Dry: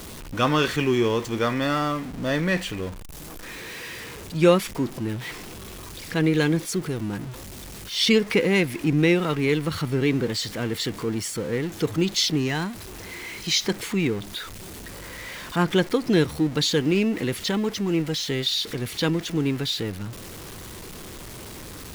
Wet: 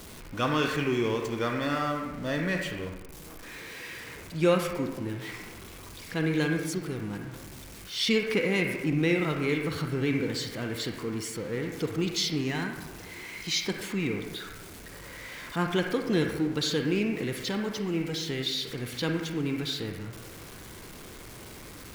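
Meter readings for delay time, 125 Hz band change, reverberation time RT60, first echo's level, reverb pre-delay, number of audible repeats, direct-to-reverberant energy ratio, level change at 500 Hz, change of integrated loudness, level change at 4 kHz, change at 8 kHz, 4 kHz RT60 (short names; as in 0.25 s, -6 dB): none, -6.0 dB, 1.1 s, none, 37 ms, none, 2.0 dB, -5.5 dB, -5.5 dB, -6.0 dB, -6.5 dB, 0.65 s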